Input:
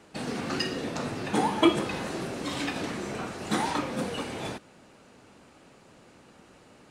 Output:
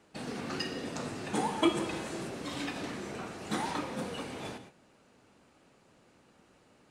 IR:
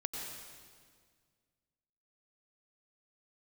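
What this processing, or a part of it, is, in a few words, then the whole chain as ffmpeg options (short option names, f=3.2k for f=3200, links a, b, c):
keyed gated reverb: -filter_complex "[0:a]asplit=3[a][b][c];[1:a]atrim=start_sample=2205[d];[b][d]afir=irnorm=-1:irlink=0[e];[c]apad=whole_len=304346[f];[e][f]sidechaingate=range=-33dB:threshold=-49dB:ratio=16:detection=peak,volume=-7.5dB[g];[a][g]amix=inputs=2:normalize=0,asettb=1/sr,asplit=3[h][i][j];[h]atrim=end=0.854[k];[i]atrim=start=0.85:end=2.29,asetpts=PTS-STARTPTS,afade=t=in:d=0.004:c=qsin,afade=t=out:st=1.436:d=0.004:c=qsin,equalizer=f=7.9k:t=o:w=0.7:g=5.5[l];[j]atrim=start=2.286[m];[k][l]acrossfade=d=0.004:c1=hsin:c2=qsin[n];[n][m]acrossfade=d=0.004:c1=qsin:c2=hsin,volume=-8.5dB"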